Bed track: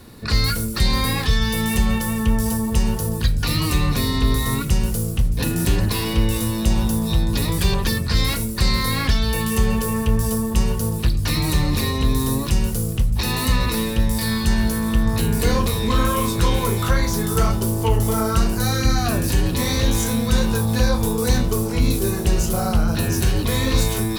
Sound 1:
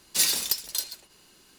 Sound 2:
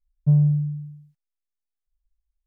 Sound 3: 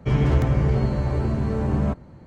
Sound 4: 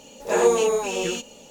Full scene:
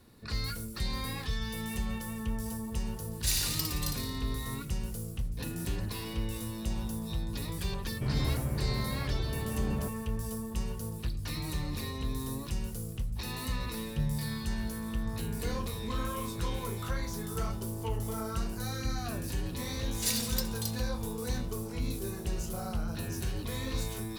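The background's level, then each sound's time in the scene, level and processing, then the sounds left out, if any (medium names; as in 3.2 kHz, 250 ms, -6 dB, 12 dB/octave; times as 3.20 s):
bed track -15.5 dB
3.08 s: add 1 -9 dB + flutter echo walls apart 9.7 m, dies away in 0.79 s
7.95 s: add 3 -12.5 dB
13.70 s: add 2 -17 dB
19.87 s: add 1 -8.5 dB
not used: 4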